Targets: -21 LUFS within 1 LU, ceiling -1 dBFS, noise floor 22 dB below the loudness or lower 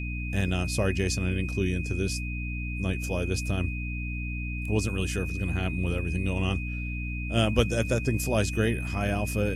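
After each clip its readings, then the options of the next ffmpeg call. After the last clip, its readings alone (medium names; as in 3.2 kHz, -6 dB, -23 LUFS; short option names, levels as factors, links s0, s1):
hum 60 Hz; highest harmonic 300 Hz; hum level -30 dBFS; steady tone 2.5 kHz; tone level -37 dBFS; loudness -28.5 LUFS; peak level -9.0 dBFS; loudness target -21.0 LUFS
-> -af "bandreject=f=60:t=h:w=6,bandreject=f=120:t=h:w=6,bandreject=f=180:t=h:w=6,bandreject=f=240:t=h:w=6,bandreject=f=300:t=h:w=6"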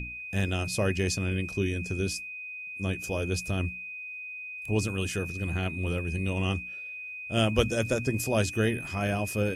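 hum not found; steady tone 2.5 kHz; tone level -37 dBFS
-> -af "bandreject=f=2500:w=30"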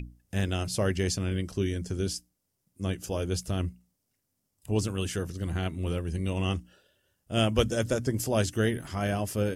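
steady tone not found; loudness -30.0 LUFS; peak level -10.5 dBFS; loudness target -21.0 LUFS
-> -af "volume=2.82"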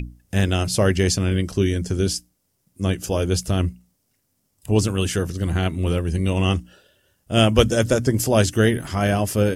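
loudness -21.0 LUFS; peak level -1.5 dBFS; noise floor -70 dBFS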